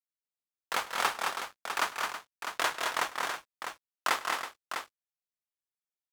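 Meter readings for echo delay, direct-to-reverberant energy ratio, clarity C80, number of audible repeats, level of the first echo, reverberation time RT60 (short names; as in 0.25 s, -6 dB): 0.102 s, none, none, 4, -19.5 dB, none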